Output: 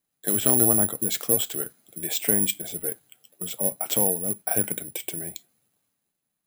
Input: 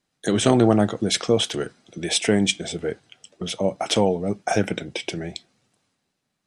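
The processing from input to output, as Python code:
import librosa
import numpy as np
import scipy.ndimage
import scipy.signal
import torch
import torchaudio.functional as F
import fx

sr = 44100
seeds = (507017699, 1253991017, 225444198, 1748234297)

y = (np.kron(scipy.signal.resample_poly(x, 1, 4), np.eye(4)[0]) * 4)[:len(x)]
y = F.gain(torch.from_numpy(y), -9.0).numpy()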